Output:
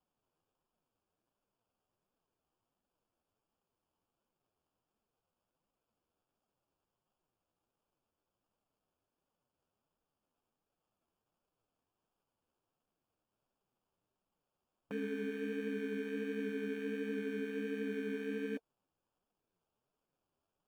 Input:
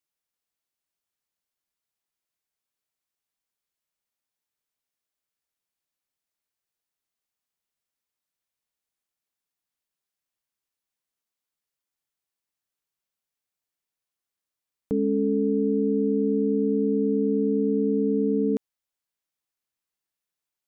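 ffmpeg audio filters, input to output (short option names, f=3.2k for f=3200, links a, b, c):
-af "aderivative,bandreject=f=460:w=12,acrusher=samples=22:mix=1:aa=0.000001,flanger=delay=3.4:depth=9.8:regen=39:speed=1.4:shape=triangular,afwtdn=0.000447,volume=16.5dB"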